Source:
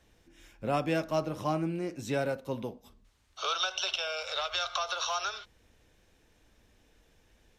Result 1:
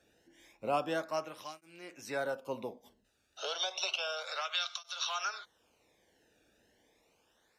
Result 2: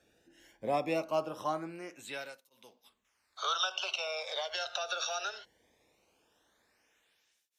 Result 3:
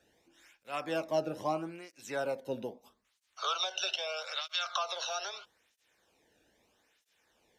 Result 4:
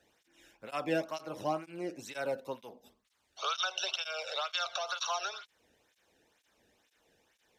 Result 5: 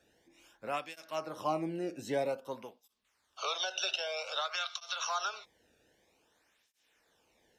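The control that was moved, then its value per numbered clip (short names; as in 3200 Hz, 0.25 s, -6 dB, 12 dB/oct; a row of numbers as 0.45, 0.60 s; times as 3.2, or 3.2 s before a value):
tape flanging out of phase, nulls at: 0.31, 0.2, 0.78, 2.1, 0.52 Hz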